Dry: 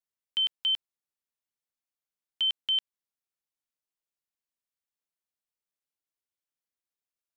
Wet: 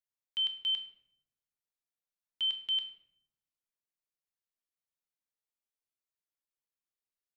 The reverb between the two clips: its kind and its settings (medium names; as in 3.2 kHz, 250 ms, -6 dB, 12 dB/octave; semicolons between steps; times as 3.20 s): simulated room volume 160 m³, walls mixed, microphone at 0.51 m; trim -7 dB